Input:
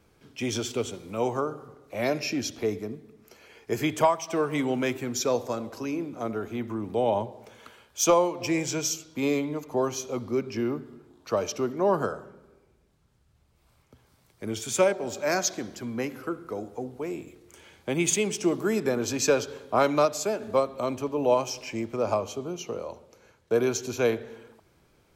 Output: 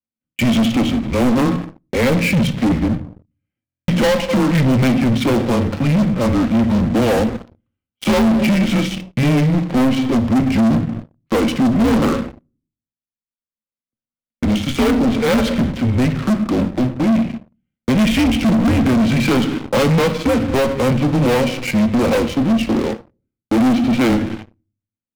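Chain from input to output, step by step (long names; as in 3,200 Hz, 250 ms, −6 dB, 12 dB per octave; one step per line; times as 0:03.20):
hollow resonant body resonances 360/670 Hz, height 11 dB, ringing for 70 ms
single-sideband voice off tune −130 Hz 200–3,300 Hz
noise gate −44 dBFS, range −10 dB
leveller curve on the samples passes 5
parametric band 780 Hz −8.5 dB 2.7 octaves
convolution reverb RT60 0.45 s, pre-delay 4 ms, DRR 11 dB
leveller curve on the samples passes 3
buffer that repeats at 0:03.65, samples 1,024, times 9
level −8 dB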